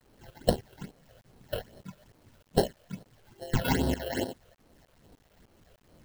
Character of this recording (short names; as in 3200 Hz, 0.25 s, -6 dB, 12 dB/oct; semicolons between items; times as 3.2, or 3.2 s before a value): aliases and images of a low sample rate 1200 Hz, jitter 0%; phasing stages 8, 2.4 Hz, lowest notch 250–2300 Hz; tremolo saw up 3.3 Hz, depth 80%; a quantiser's noise floor 12-bit, dither none